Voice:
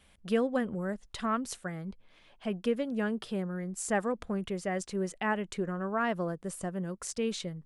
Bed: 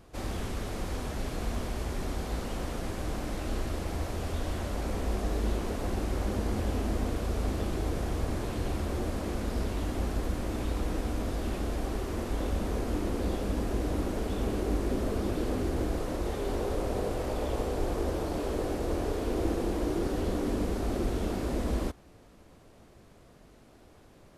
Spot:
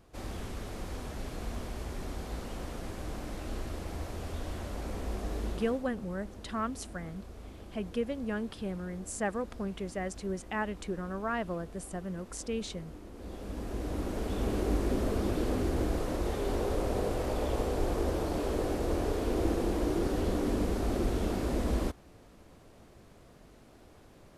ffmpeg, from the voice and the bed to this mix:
ffmpeg -i stem1.wav -i stem2.wav -filter_complex "[0:a]adelay=5300,volume=-3dB[link_01];[1:a]volume=11.5dB,afade=type=out:start_time=5.44:duration=0.42:silence=0.266073,afade=type=in:start_time=13.13:duration=1.48:silence=0.149624[link_02];[link_01][link_02]amix=inputs=2:normalize=0" out.wav

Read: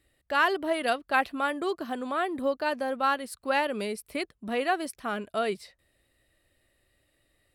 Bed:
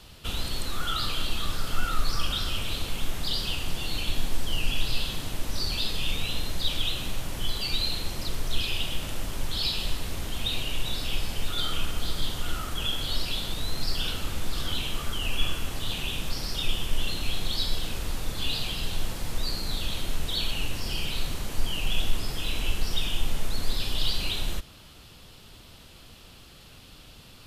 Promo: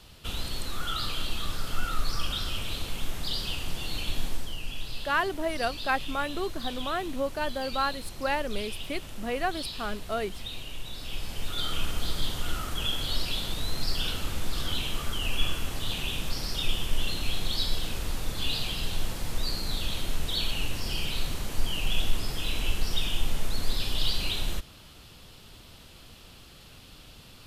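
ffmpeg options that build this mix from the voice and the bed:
ffmpeg -i stem1.wav -i stem2.wav -filter_complex "[0:a]adelay=4750,volume=-2.5dB[link_01];[1:a]volume=6dB,afade=type=out:start_time=4.27:duration=0.29:silence=0.473151,afade=type=in:start_time=10.93:duration=0.95:silence=0.375837[link_02];[link_01][link_02]amix=inputs=2:normalize=0" out.wav

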